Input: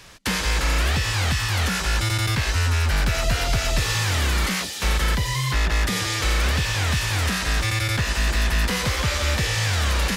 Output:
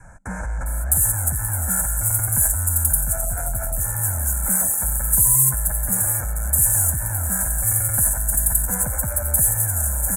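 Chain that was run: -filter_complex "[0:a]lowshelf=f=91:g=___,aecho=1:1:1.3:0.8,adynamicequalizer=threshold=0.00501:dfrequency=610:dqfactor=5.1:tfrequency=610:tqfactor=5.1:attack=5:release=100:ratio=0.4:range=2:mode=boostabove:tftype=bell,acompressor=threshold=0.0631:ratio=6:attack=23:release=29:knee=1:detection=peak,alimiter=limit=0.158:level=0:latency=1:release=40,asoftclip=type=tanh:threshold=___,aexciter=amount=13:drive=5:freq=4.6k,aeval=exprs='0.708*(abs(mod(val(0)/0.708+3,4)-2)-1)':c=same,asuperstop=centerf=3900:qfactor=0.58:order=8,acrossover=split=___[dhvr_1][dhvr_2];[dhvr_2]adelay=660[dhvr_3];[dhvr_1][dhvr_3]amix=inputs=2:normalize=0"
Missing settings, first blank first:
5, 0.119, 4600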